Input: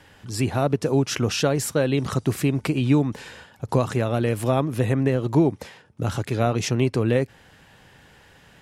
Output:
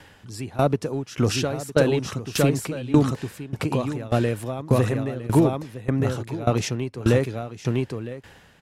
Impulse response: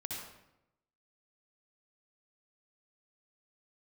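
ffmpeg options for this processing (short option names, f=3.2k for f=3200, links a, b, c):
-filter_complex "[0:a]asplit=2[a][b];[b]asoftclip=type=hard:threshold=-15.5dB,volume=-10dB[c];[a][c]amix=inputs=2:normalize=0,aecho=1:1:960:0.708,aeval=exprs='val(0)*pow(10,-19*if(lt(mod(1.7*n/s,1),2*abs(1.7)/1000),1-mod(1.7*n/s,1)/(2*abs(1.7)/1000),(mod(1.7*n/s,1)-2*abs(1.7)/1000)/(1-2*abs(1.7)/1000))/20)':c=same,volume=2dB"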